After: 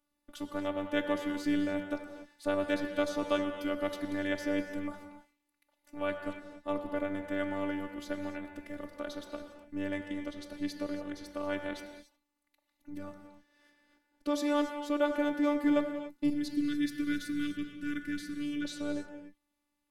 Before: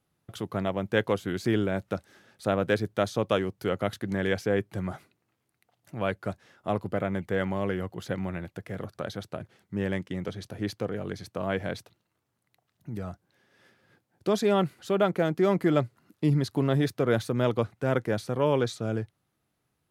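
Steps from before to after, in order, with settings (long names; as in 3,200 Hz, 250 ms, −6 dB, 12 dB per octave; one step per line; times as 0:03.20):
0:16.30–0:18.65: elliptic band-stop filter 350–1,500 Hz, stop band 40 dB
phases set to zero 293 Hz
reverb whose tail is shaped and stops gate 310 ms flat, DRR 6 dB
level −3 dB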